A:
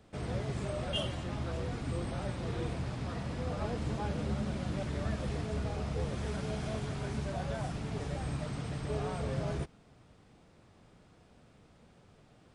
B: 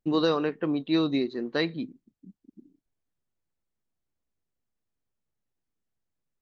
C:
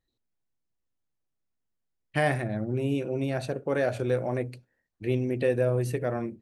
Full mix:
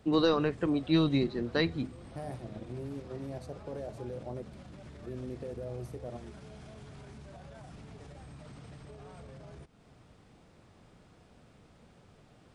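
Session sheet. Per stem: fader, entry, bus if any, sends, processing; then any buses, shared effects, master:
+1.5 dB, 0.00 s, no send, limiter -33.5 dBFS, peak gain reduction 11.5 dB; compressor 4:1, threshold -49 dBFS, peak gain reduction 10 dB
-2.0 dB, 0.00 s, no send, octaver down 1 oct, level -5 dB
-9.5 dB, 0.00 s, no send, band shelf 2100 Hz -14 dB; level quantiser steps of 10 dB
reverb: off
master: dry

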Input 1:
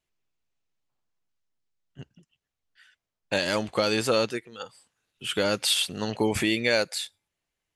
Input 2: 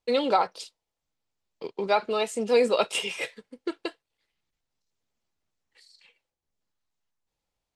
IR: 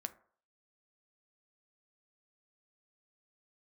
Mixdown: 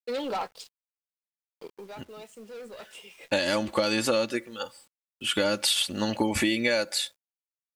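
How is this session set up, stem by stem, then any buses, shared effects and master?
0.0 dB, 0.00 s, send -7.5 dB, comb 3.5 ms, depth 59%
-16.0 dB, 0.00 s, send -17.5 dB, sample leveller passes 3; auto duck -16 dB, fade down 0.40 s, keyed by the first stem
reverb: on, RT60 0.50 s, pre-delay 5 ms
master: requantised 10-bit, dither none; compressor 6:1, threshold -21 dBFS, peak gain reduction 7.5 dB

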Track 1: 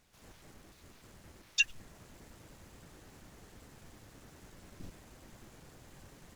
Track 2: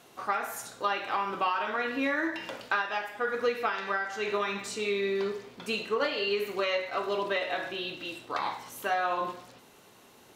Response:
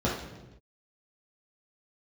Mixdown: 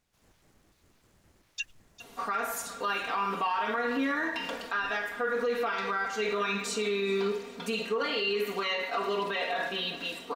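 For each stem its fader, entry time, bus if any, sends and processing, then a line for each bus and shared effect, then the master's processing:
-8.0 dB, 0.00 s, no send, echo send -15 dB, dry
+1.0 dB, 2.00 s, no send, echo send -21.5 dB, comb 4.3 ms, depth 90%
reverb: off
echo: feedback echo 0.402 s, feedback 53%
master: limiter -21.5 dBFS, peak gain reduction 10.5 dB

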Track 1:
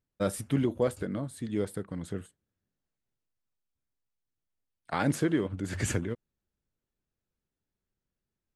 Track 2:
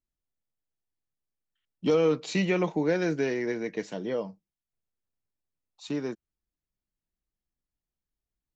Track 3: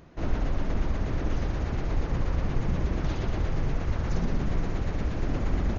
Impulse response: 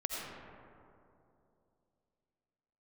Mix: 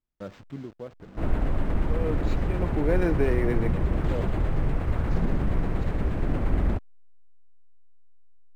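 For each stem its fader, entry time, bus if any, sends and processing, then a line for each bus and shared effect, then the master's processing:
-8.0 dB, 0.00 s, no send, level-crossing sampler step -34 dBFS; auto duck -9 dB, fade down 1.95 s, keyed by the second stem
+2.5 dB, 0.00 s, no send, high shelf 4600 Hz -9.5 dB; auto swell 0.727 s
+1.0 dB, 1.00 s, send -15.5 dB, LPF 5200 Hz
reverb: on, RT60 2.8 s, pre-delay 45 ms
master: high shelf 4100 Hz -6 dB; decimation joined by straight lines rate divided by 4×

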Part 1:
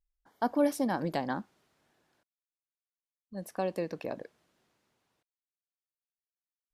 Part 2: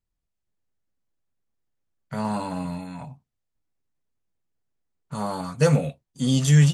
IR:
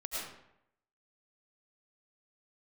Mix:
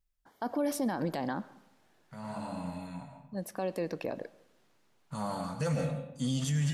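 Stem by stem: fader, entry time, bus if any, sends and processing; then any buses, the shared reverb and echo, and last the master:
+2.5 dB, 0.00 s, send -23 dB, dry
-9.0 dB, 0.00 s, send -5.5 dB, bell 410 Hz -8.5 dB 0.25 oct; auto duck -17 dB, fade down 0.40 s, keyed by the first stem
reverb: on, RT60 0.80 s, pre-delay 65 ms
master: limiter -23 dBFS, peak gain reduction 10.5 dB

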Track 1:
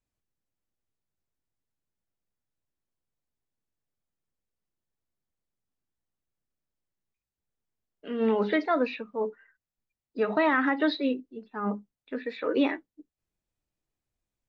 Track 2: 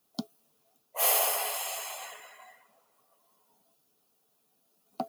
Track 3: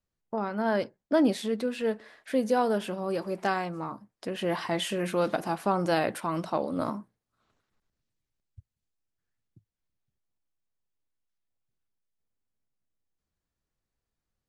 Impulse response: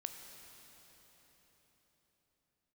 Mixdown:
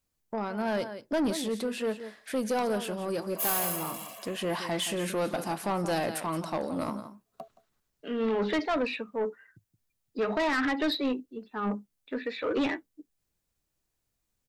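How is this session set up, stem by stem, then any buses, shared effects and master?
+1.5 dB, 0.00 s, no send, no echo send, dry
-10.0 dB, 2.40 s, no send, echo send -20 dB, Wiener smoothing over 9 samples; comb 1.8 ms, depth 97%
-0.5 dB, 0.00 s, no send, echo send -13 dB, dry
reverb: off
echo: echo 0.172 s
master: high shelf 5200 Hz +8.5 dB; soft clip -23 dBFS, distortion -11 dB

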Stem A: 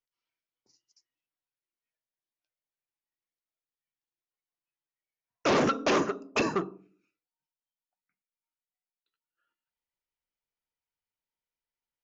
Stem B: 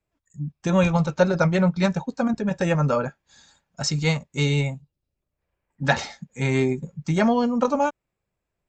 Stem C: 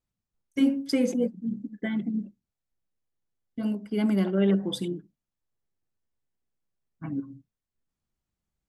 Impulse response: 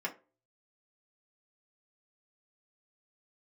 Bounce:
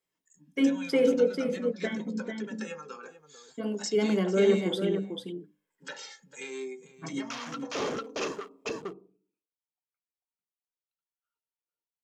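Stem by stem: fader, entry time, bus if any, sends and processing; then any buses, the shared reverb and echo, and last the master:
-1.5 dB, 1.85 s, bus A, no send, echo send -10 dB, Wiener smoothing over 25 samples
-3.0 dB, 0.00 s, bus A, send -9.5 dB, echo send -19 dB, compressor 6:1, threshold -27 dBFS, peak gain reduction 14 dB; HPF 200 Hz 24 dB/oct; cascading flanger falling 0.28 Hz
-2.0 dB, 0.00 s, no bus, send -9.5 dB, echo send -5 dB, three-band isolator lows -17 dB, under 150 Hz, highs -16 dB, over 3600 Hz; notches 50/100/150/200/250/300 Hz
bus A: 0.0 dB, HPF 910 Hz 24 dB/oct; compressor 2.5:1, threshold -44 dBFS, peak gain reduction 12 dB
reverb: on, RT60 0.35 s, pre-delay 3 ms
echo: echo 0.445 s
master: high shelf 4400 Hz +9.5 dB; small resonant body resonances 450/3200 Hz, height 10 dB, ringing for 45 ms

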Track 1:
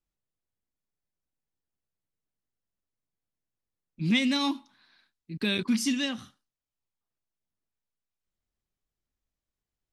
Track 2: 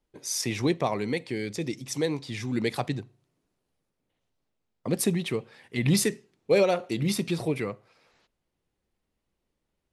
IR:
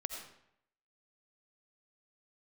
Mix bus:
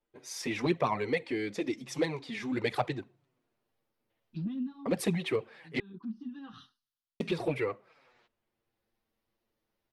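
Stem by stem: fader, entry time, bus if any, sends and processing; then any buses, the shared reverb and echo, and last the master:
-1.5 dB, 0.35 s, no send, treble ducked by the level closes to 450 Hz, closed at -24 dBFS; high shelf 3100 Hz +9.5 dB; fixed phaser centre 2200 Hz, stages 6; auto duck -10 dB, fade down 0.30 s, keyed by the second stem
+1.0 dB, 0.00 s, muted 5.8–7.2, no send, tone controls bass 0 dB, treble -12 dB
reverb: off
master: low shelf 250 Hz -8 dB; AGC gain up to 3 dB; envelope flanger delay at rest 8.9 ms, full sweep at -16 dBFS

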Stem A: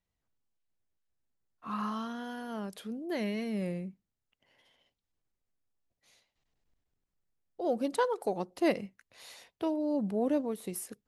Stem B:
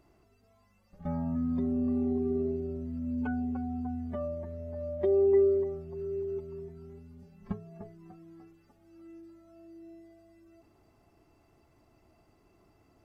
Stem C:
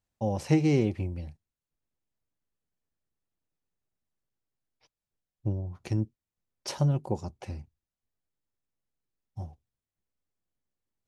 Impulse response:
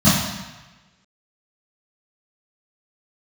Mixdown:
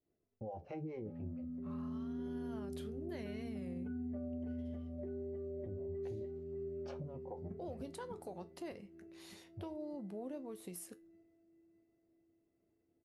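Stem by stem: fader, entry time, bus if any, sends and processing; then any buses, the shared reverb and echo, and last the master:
2.18 s -13.5 dB -> 2.65 s -2.5 dB, 0.00 s, no bus, no send, no echo send, compressor 4:1, threshold -35 dBFS, peak gain reduction 11.5 dB
-13.0 dB, 0.00 s, bus A, no send, echo send -5 dB, expander -56 dBFS; graphic EQ 125/250/500/1000/2000 Hz +7/+8/+12/-8/+9 dB; limiter -16.5 dBFS, peak gain reduction 10.5 dB
-1.5 dB, 0.20 s, bus A, no send, no echo send, bell 550 Hz +8.5 dB 1.3 oct; harmonic tremolo 4.7 Hz, depth 100%, crossover 500 Hz; cascading phaser falling 1.6 Hz
bus A: 0.0 dB, LPF 1700 Hz 12 dB/oct; compressor 2:1, threshold -42 dBFS, peak gain reduction 11 dB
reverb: off
echo: feedback echo 0.606 s, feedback 49%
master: resonator 87 Hz, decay 0.21 s, harmonics all, mix 60%; limiter -35.5 dBFS, peak gain reduction 6.5 dB

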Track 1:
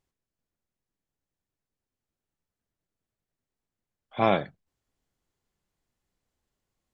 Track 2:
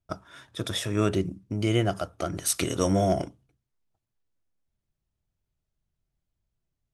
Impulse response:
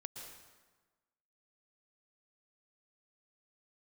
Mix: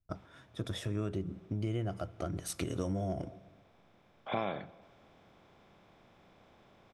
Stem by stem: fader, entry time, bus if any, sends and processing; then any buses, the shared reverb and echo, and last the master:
-3.0 dB, 0.15 s, send -22.5 dB, per-bin compression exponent 0.6
-9.0 dB, 0.00 s, send -15.5 dB, tilt -2 dB/oct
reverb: on, RT60 1.3 s, pre-delay 0.107 s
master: compressor 6:1, threshold -31 dBFS, peak gain reduction 12.5 dB

